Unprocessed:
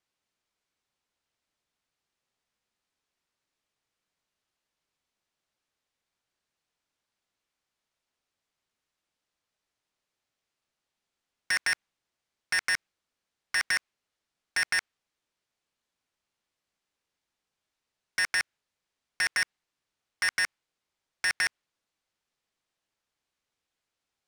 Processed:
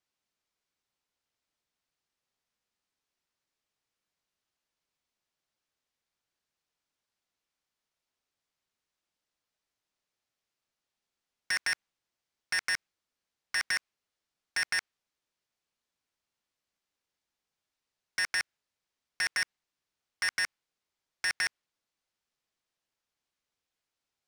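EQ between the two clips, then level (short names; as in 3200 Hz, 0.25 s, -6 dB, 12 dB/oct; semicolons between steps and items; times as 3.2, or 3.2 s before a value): bell 5300 Hz +2 dB; -3.5 dB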